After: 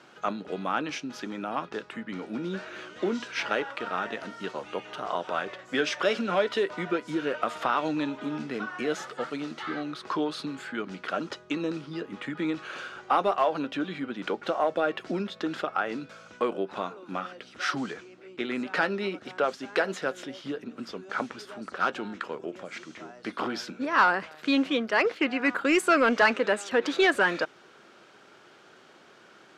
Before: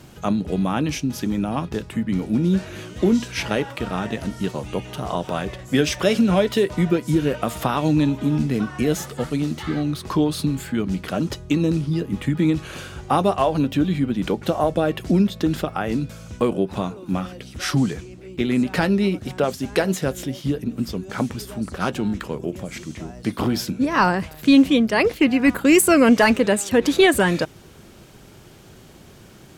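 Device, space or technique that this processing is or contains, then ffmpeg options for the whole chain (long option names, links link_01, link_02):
intercom: -af "highpass=390,lowpass=4700,equalizer=frequency=1400:width_type=o:width=0.57:gain=7.5,asoftclip=type=tanh:threshold=-6.5dB,volume=-4.5dB"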